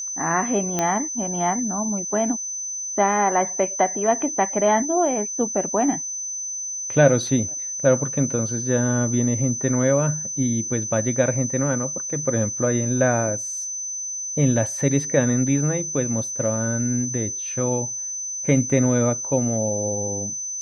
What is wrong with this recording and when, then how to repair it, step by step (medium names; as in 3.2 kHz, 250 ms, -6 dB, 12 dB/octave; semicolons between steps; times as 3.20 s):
whine 6.1 kHz -27 dBFS
0.79 s: pop -8 dBFS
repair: de-click; band-stop 6.1 kHz, Q 30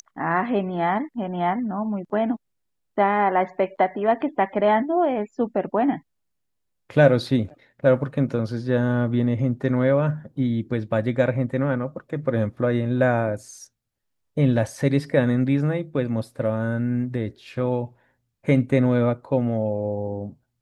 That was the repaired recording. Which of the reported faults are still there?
nothing left